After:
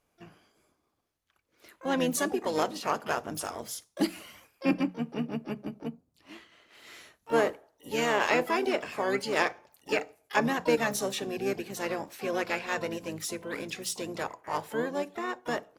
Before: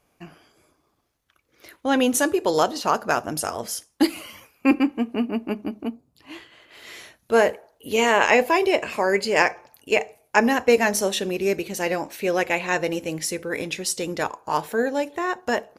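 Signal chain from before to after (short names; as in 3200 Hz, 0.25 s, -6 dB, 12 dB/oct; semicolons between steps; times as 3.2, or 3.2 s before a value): harmoniser -7 st -8 dB, +4 st -16 dB, +12 st -14 dB; notches 60/120/180 Hz; gain -9 dB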